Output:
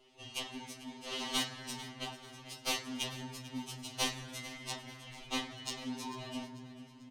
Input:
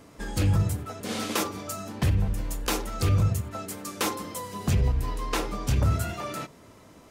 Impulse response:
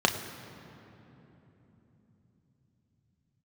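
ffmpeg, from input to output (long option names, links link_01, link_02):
-filter_complex "[0:a]highpass=570,aderivative,aeval=exprs='val(0)*sin(2*PI*1400*n/s)':channel_layout=same,afreqshift=-330,adynamicsmooth=sensitivity=4.5:basefreq=2600,aecho=1:1:443|886|1329|1772:0.15|0.0673|0.0303|0.0136,asplit=2[link_01][link_02];[1:a]atrim=start_sample=2205,lowpass=8100,lowshelf=frequency=130:gain=-5[link_03];[link_02][link_03]afir=irnorm=-1:irlink=0,volume=-13dB[link_04];[link_01][link_04]amix=inputs=2:normalize=0,afftfilt=real='re*2.45*eq(mod(b,6),0)':imag='im*2.45*eq(mod(b,6),0)':win_size=2048:overlap=0.75,volume=10.5dB"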